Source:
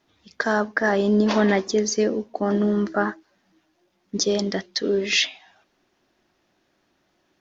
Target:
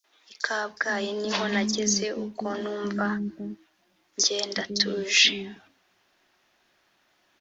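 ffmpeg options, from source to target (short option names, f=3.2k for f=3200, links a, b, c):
-filter_complex "[0:a]acrossover=split=300|5600[a][b][c];[b]adelay=40[d];[a]adelay=430[e];[e][d][c]amix=inputs=3:normalize=0,acrossover=split=300|3000[f][g][h];[g]acompressor=threshold=-29dB:ratio=6[i];[f][i][h]amix=inputs=3:normalize=0,tiltshelf=f=670:g=-6"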